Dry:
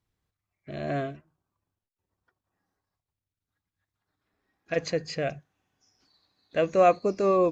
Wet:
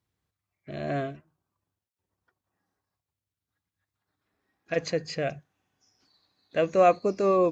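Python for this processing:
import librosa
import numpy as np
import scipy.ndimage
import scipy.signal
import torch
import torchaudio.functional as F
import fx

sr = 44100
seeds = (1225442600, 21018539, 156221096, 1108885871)

y = scipy.signal.sosfilt(scipy.signal.butter(2, 59.0, 'highpass', fs=sr, output='sos'), x)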